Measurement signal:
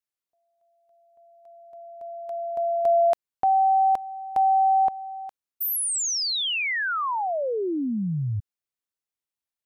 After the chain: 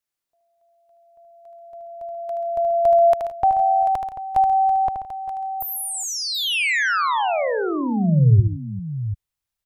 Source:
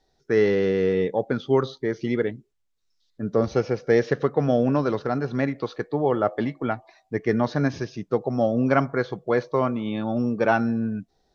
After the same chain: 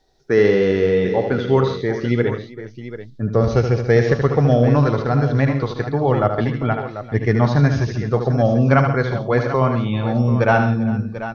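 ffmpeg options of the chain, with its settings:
-filter_complex "[0:a]asubboost=boost=6:cutoff=110,acrossover=split=2800[s0][s1];[s1]acompressor=threshold=0.02:ratio=4:attack=1:release=60[s2];[s0][s2]amix=inputs=2:normalize=0,aecho=1:1:76|134|166|394|740:0.447|0.237|0.119|0.126|0.251,volume=1.78"

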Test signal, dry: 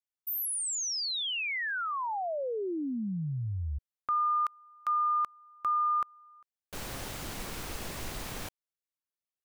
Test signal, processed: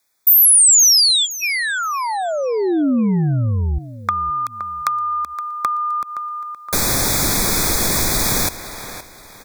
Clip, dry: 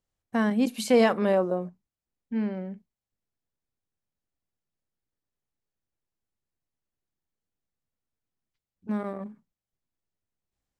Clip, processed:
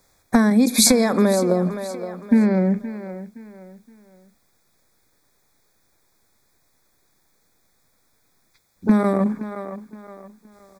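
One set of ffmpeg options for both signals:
-filter_complex "[0:a]acompressor=threshold=0.0141:ratio=8:attack=43:release=197:knee=6:detection=peak,lowshelf=f=250:g=-9,aecho=1:1:519|1038|1557:0.15|0.0494|0.0163,acrossover=split=320|4400[s0][s1][s2];[s1]acompressor=threshold=0.001:ratio=2:attack=37:release=117:knee=2.83:detection=peak[s3];[s0][s3][s2]amix=inputs=3:normalize=0,apsyclip=50.1,asuperstop=centerf=2900:order=20:qfactor=3.7,volume=0.473"

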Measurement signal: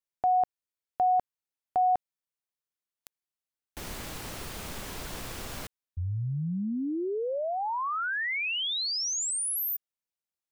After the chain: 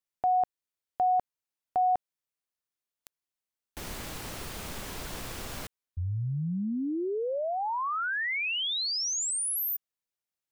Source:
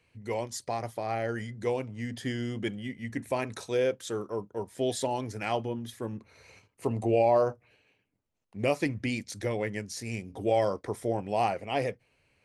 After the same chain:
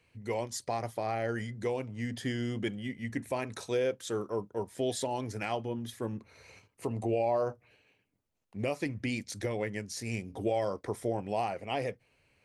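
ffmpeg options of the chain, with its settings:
-af "alimiter=limit=0.0891:level=0:latency=1:release=296"

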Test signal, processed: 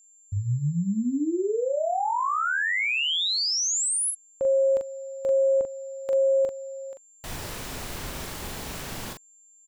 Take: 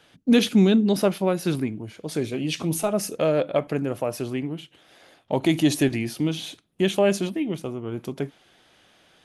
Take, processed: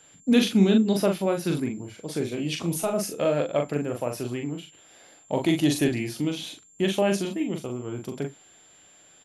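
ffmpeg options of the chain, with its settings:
-filter_complex "[0:a]aeval=exprs='val(0)+0.00282*sin(2*PI*7300*n/s)':c=same,asplit=2[s0][s1];[s1]adelay=41,volume=0.596[s2];[s0][s2]amix=inputs=2:normalize=0,volume=0.708"

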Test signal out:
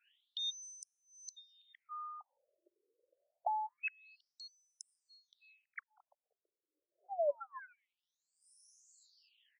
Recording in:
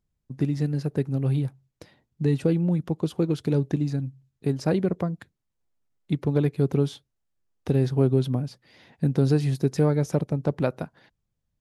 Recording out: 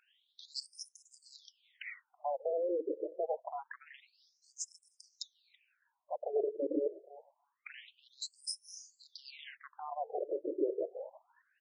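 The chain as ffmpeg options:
-filter_complex "[0:a]afftfilt=real='re*pow(10,20/40*sin(2*PI*(1.1*log(max(b,1)*sr/1024/100)/log(2)-(1.4)*(pts-256)/sr)))':imag='im*pow(10,20/40*sin(2*PI*(1.1*log(max(b,1)*sr/1024/100)/log(2)-(1.4)*(pts-256)/sr)))':win_size=1024:overlap=0.75,areverse,acompressor=threshold=0.0355:ratio=20,areverse,crystalizer=i=0.5:c=0,aeval=exprs='0.126*sin(PI/2*5.62*val(0)/0.126)':c=same,adynamicequalizer=threshold=0.00631:dfrequency=6500:dqfactor=3.1:tfrequency=6500:tqfactor=3.1:attack=5:release=100:ratio=0.375:range=3:mode=cutabove:tftype=bell,alimiter=limit=0.0708:level=0:latency=1:release=257,asplit=2[s0][s1];[s1]adelay=326,lowpass=f=820:p=1,volume=0.0891,asplit=2[s2][s3];[s3]adelay=326,lowpass=f=820:p=1,volume=0.19[s4];[s2][s4]amix=inputs=2:normalize=0[s5];[s0][s5]amix=inputs=2:normalize=0,acrossover=split=370[s6][s7];[s7]acompressor=threshold=0.0112:ratio=3[s8];[s6][s8]amix=inputs=2:normalize=0,equalizer=f=1200:t=o:w=0.61:g=-13.5,afftfilt=real='re*between(b*sr/1024,420*pow(7300/420,0.5+0.5*sin(2*PI*0.26*pts/sr))/1.41,420*pow(7300/420,0.5+0.5*sin(2*PI*0.26*pts/sr))*1.41)':imag='im*between(b*sr/1024,420*pow(7300/420,0.5+0.5*sin(2*PI*0.26*pts/sr))/1.41,420*pow(7300/420,0.5+0.5*sin(2*PI*0.26*pts/sr))*1.41)':win_size=1024:overlap=0.75,volume=1.88"

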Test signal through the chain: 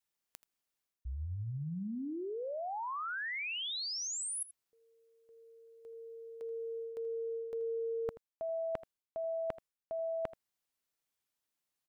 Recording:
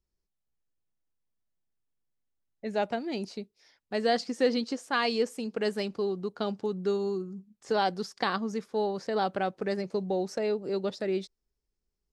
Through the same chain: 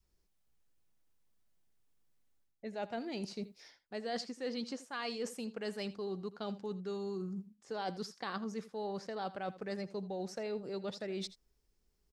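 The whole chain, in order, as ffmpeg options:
-af "adynamicequalizer=threshold=0.00708:dfrequency=330:dqfactor=1.3:tfrequency=330:tqfactor=1.3:attack=5:release=100:ratio=0.375:range=2.5:mode=cutabove:tftype=bell,areverse,acompressor=threshold=0.00501:ratio=5,areverse,aecho=1:1:81:0.15,volume=2.24"

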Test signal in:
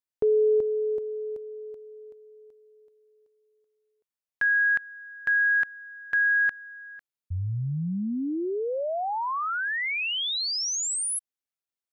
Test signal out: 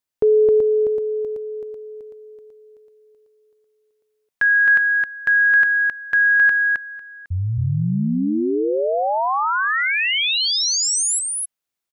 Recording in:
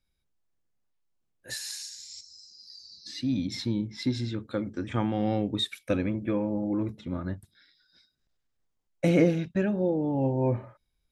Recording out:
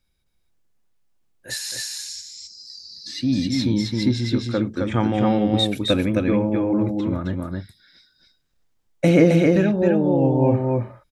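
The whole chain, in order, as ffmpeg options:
-af "aecho=1:1:265:0.708,volume=2.24"

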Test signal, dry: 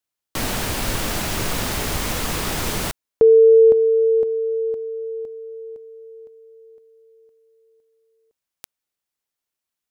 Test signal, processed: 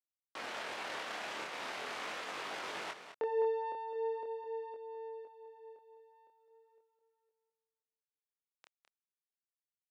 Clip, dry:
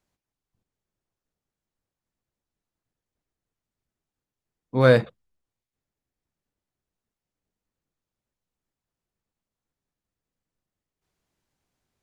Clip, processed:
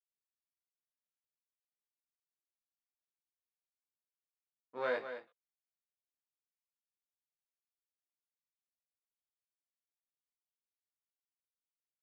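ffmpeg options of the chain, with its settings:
-af "aeval=exprs='if(lt(val(0),0),0.447*val(0),val(0))':c=same,acompressor=threshold=0.1:ratio=1.5:attack=5.4:release=80:knee=1,agate=range=0.0224:threshold=0.00251:ratio=3:release=22:detection=peak,highpass=550,lowpass=2500,aemphasis=mode=production:type=cd,aecho=1:1:208:0.316,flanger=delay=20:depth=7.9:speed=0.4,volume=0.473"

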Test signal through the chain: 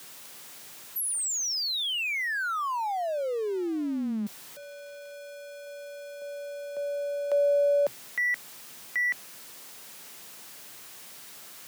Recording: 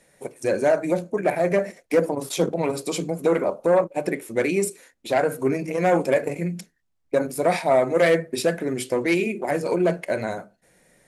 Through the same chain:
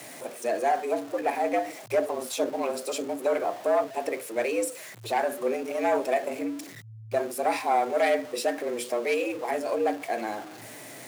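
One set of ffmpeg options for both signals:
-af "aeval=exprs='val(0)+0.5*0.0251*sgn(val(0))':c=same,afreqshift=110,volume=0.501"

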